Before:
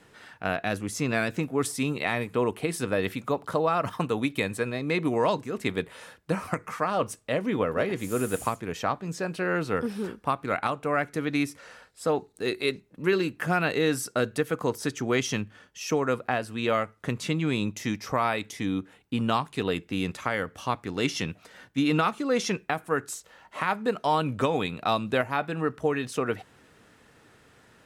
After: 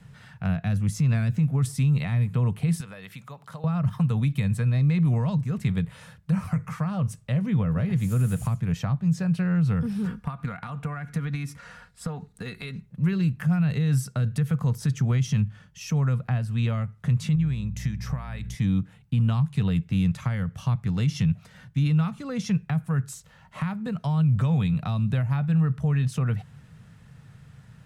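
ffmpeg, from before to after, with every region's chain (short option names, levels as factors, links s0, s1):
-filter_complex "[0:a]asettb=1/sr,asplit=3[s0][s1][s2];[s0]atrim=end=2.804[s3];[s1]atrim=start=2.8:end=3.64,asetpts=PTS-STARTPTS,afade=t=in:d=0.004:c=qsin,afade=t=out:st=0.836:d=0.004:c=qsin,highpass=f=820:p=1,acompressor=threshold=0.0112:ratio=2.5:attack=3.2:release=140:knee=1:detection=peak[s4];[s2]atrim=start=3.636[s5];[s3][s4]acrossfade=d=0.004:c1=hsin:c2=qsin[s6];[s6][s5]acrossfade=d=0.004:c1=qsin:c2=hsin,asettb=1/sr,asplit=3[s7][s8][s9];[s7]atrim=end=10.054[s10];[s8]atrim=start=10.05:end=12.86,asetpts=PTS-STARTPTS,afade=t=in:d=0.004:c=qsin,afade=t=out:st=2.806:d=0.004:c=qsin,equalizer=f=1400:t=o:w=1.4:g=6,aecho=1:1:4.2:0.45,atrim=end_sample=123921,acompressor=threshold=0.0316:ratio=4:attack=3.2:release=140:knee=1:detection=peak[s11];[s9]atrim=start=12.856[s12];[s10][s11]acrossfade=d=0.004:c1=hsin:c2=qsin[s13];[s13][s12]acrossfade=d=0.004:c1=qsin:c2=hsin,asettb=1/sr,asplit=3[s14][s15][s16];[s14]atrim=end=17.354[s17];[s15]atrim=start=17.35:end=18.55,asetpts=PTS-STARTPTS,afade=t=in:d=0.004:c=qsin,afade=t=out:st=1.196:d=0.004:c=qsin,equalizer=f=1700:w=5.1:g=6,acompressor=threshold=0.02:ratio=6:attack=3.2:release=140:knee=1:detection=peak,aeval=exprs='val(0)+0.00447*(sin(2*PI*60*n/s)+sin(2*PI*2*60*n/s)/2+sin(2*PI*3*60*n/s)/3+sin(2*PI*4*60*n/s)/4+sin(2*PI*5*60*n/s)/5)':c=same[s18];[s16]atrim=start=18.546[s19];[s17][s18]acrossfade=d=0.004:c1=hsin:c2=qsin[s20];[s20][s19]acrossfade=d=0.004:c1=qsin:c2=hsin,lowshelf=f=220:t=q:w=3:g=13.5,alimiter=limit=0.224:level=0:latency=1:release=38,acrossover=split=280[s21][s22];[s22]acompressor=threshold=0.0282:ratio=6[s23];[s21][s23]amix=inputs=2:normalize=0,volume=0.75"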